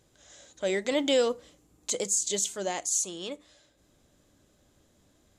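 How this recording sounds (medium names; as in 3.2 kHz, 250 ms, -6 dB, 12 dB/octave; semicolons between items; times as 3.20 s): noise floor -66 dBFS; spectral tilt -1.5 dB/octave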